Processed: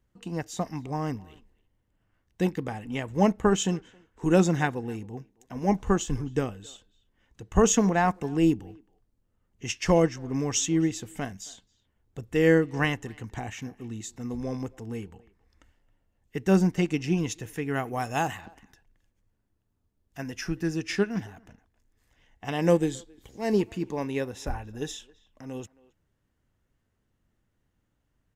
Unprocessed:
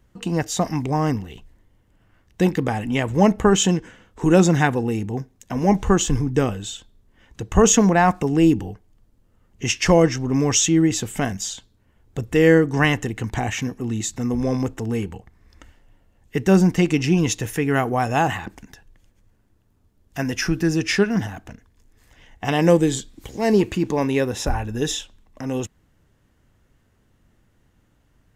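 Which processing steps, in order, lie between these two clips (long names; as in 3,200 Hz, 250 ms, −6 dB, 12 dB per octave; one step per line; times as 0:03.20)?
0:17.84–0:18.41: high-shelf EQ 4,100 Hz +8.5 dB
far-end echo of a speakerphone 270 ms, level −20 dB
expander for the loud parts 1.5 to 1, over −27 dBFS
level −5 dB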